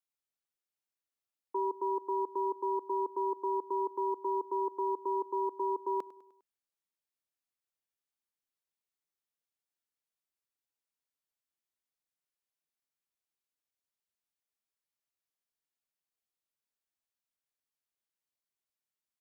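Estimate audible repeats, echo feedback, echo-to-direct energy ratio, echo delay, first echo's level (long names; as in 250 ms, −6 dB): 3, 51%, −17.0 dB, 101 ms, −18.5 dB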